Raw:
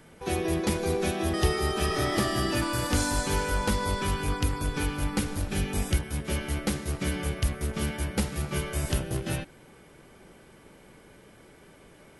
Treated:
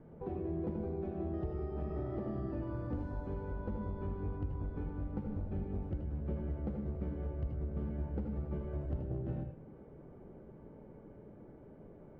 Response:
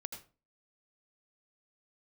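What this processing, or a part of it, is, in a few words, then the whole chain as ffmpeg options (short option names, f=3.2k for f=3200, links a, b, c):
television next door: -filter_complex "[0:a]acompressor=threshold=-36dB:ratio=4,lowpass=600[a];[1:a]atrim=start_sample=2205[b];[a][b]afir=irnorm=-1:irlink=0,volume=3dB"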